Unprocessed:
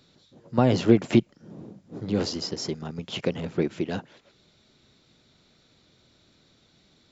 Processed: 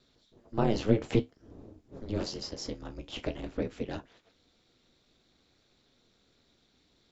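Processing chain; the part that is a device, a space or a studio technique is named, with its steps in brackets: alien voice (ring modulator 110 Hz; flange 0.51 Hz, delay 7 ms, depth 9.8 ms, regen -56%)

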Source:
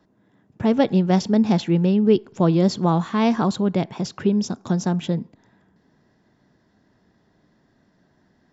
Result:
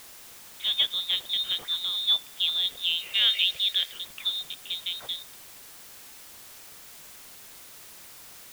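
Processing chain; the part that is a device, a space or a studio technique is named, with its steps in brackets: scrambled radio voice (band-pass 350–2700 Hz; frequency inversion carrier 3.9 kHz; white noise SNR 15 dB); 3.15–3.92 s: graphic EQ 125/250/500/1000/2000/4000 Hz -5/-8/+4/-6/+6/+4 dB; trim -4.5 dB

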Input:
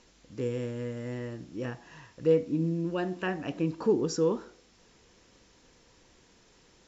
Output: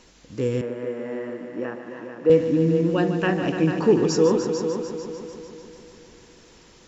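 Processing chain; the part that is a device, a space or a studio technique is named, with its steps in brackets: multi-head tape echo (multi-head delay 148 ms, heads all three, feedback 53%, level -11 dB; wow and flutter 14 cents); 0.61–2.30 s: three-band isolator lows -21 dB, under 230 Hz, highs -16 dB, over 2.2 kHz; trim +7.5 dB

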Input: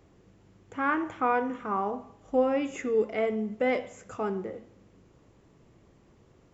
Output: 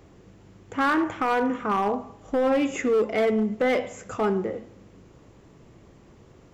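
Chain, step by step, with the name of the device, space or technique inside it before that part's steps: limiter into clipper (peak limiter -20.5 dBFS, peak gain reduction 7.5 dB; hard clipper -25 dBFS, distortion -16 dB); trim +7.5 dB

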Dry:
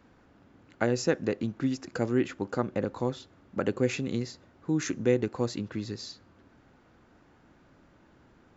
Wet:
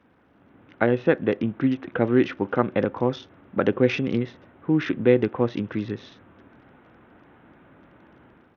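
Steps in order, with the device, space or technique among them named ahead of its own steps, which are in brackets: 2.42–2.89 s: treble shelf 2.2 kHz +6.5 dB; Bluetooth headset (high-pass 110 Hz 6 dB/octave; level rider gain up to 8 dB; resampled via 8 kHz; SBC 64 kbps 48 kHz)

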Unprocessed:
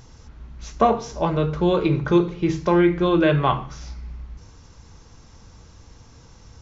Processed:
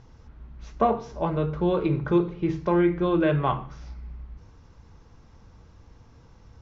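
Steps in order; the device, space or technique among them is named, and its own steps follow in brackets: through cloth (low-pass 6.3 kHz 12 dB/octave; treble shelf 3.6 kHz -12 dB); trim -4 dB

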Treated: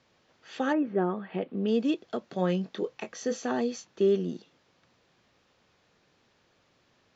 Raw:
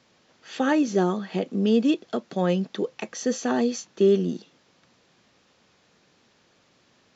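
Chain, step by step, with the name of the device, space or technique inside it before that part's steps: 0.72–1.67 s: low-pass 1.9 kHz -> 3.7 kHz 24 dB/octave; low shelf boost with a cut just above (bass shelf 100 Hz +5.5 dB; peaking EQ 210 Hz -4 dB 1.1 oct); treble shelf 6.4 kHz -9 dB; 2.19–3.47 s: doubling 22 ms -8.5 dB; trim -4 dB

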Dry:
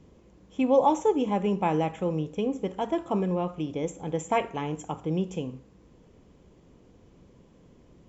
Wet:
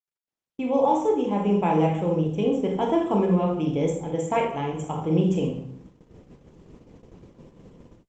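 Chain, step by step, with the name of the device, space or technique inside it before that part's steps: speakerphone in a meeting room (reverberation RT60 0.65 s, pre-delay 21 ms, DRR 0.5 dB; level rider gain up to 15.5 dB; gate -36 dBFS, range -44 dB; trim -8.5 dB; Opus 32 kbps 48 kHz)

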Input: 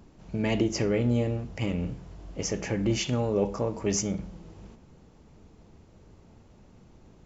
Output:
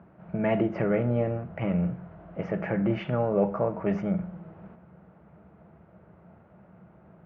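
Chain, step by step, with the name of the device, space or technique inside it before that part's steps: bass cabinet (cabinet simulation 78–2100 Hz, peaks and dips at 100 Hz -8 dB, 180 Hz +7 dB, 260 Hz -9 dB, 420 Hz -3 dB, 650 Hz +8 dB, 1.4 kHz +7 dB); trim +1.5 dB

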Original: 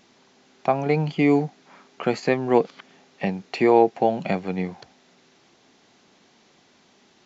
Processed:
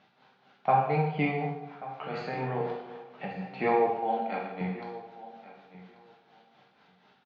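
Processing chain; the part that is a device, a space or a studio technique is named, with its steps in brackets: 3.87–4.61 s: Chebyshev high-pass 220 Hz, order 5; combo amplifier with spring reverb and tremolo (spring tank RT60 1.6 s, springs 36/49 ms, chirp 35 ms, DRR 12 dB; tremolo 4.1 Hz, depth 80%; cabinet simulation 89–3900 Hz, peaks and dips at 130 Hz +7 dB, 320 Hz -9 dB, 790 Hz +7 dB, 1.4 kHz +7 dB); feedback delay 1136 ms, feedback 15%, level -17 dB; gated-style reverb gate 250 ms falling, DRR -2 dB; trim -7 dB

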